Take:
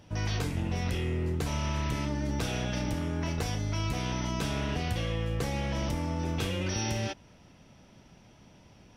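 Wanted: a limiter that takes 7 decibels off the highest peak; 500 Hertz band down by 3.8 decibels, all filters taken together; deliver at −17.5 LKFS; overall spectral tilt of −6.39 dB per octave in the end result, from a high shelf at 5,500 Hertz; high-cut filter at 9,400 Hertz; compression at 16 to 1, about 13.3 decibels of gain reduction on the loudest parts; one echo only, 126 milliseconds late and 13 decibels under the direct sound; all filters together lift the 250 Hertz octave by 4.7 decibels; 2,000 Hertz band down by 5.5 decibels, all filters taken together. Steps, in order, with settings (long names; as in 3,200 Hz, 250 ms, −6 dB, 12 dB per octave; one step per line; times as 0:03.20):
low-pass filter 9,400 Hz
parametric band 250 Hz +8.5 dB
parametric band 500 Hz −8 dB
parametric band 2,000 Hz −7.5 dB
high-shelf EQ 5,500 Hz +3.5 dB
downward compressor 16 to 1, threshold −38 dBFS
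brickwall limiter −37 dBFS
single-tap delay 126 ms −13 dB
level +29.5 dB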